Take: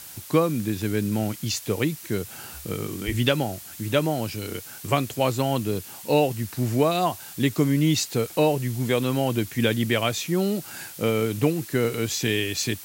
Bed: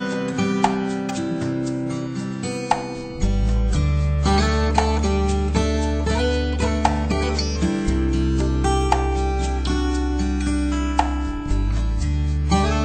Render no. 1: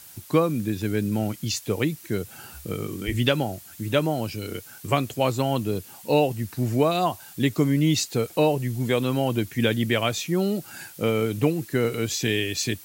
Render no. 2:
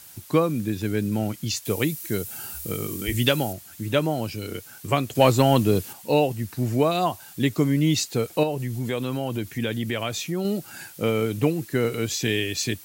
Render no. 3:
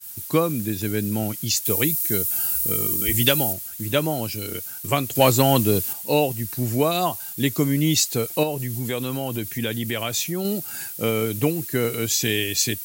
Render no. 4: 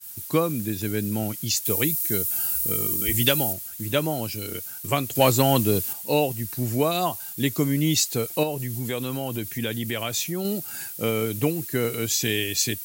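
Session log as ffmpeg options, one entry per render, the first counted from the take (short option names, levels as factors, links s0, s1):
-af "afftdn=nr=6:nf=-42"
-filter_complex "[0:a]asettb=1/sr,asplit=3[s0][s1][s2];[s0]atrim=end=1.654[s3];[s1]atrim=start=1.65:end=3.53,asetpts=PTS-STARTPTS,afade=t=in:d=0.004:c=qsin,afade=t=out:st=1.876:d=0.004:c=qsin,highshelf=f=6100:g=11.5[s4];[s2]atrim=start=3.526[s5];[s3][s4]acrossfade=d=0.004:c1=hsin:c2=qsin[s6];[s6][s5]acrossfade=d=0.004:c1=qsin:c2=hsin,asettb=1/sr,asplit=3[s7][s8][s9];[s7]atrim=end=5.154[s10];[s8]atrim=start=5.15:end=5.93,asetpts=PTS-STARTPTS,afade=t=in:d=0.004:c=qsin,afade=t=out:st=0.776:d=0.004:c=qsin,acontrast=69[s11];[s9]atrim=start=5.926[s12];[s10][s11]acrossfade=d=0.004:c1=hsin:c2=qsin[s13];[s13][s12]acrossfade=d=0.004:c1=qsin:c2=hsin,asettb=1/sr,asplit=3[s14][s15][s16];[s14]atrim=end=8.434[s17];[s15]atrim=start=8.43:end=10.45,asetpts=PTS-STARTPTS,afade=t=in:d=0.004:c=qsin,afade=t=out:st=2.016:d=0.004:c=qsin,acompressor=threshold=0.0562:ratio=2:attack=3.2:release=140:knee=1:detection=peak[s18];[s16]atrim=start=10.446[s19];[s17][s18]acrossfade=d=0.004:c1=hsin:c2=qsin[s20];[s20][s19]acrossfade=d=0.004:c1=qsin:c2=hsin"
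-af "agate=range=0.0224:threshold=0.00794:ratio=3:detection=peak,aemphasis=mode=production:type=50kf"
-af "volume=0.794"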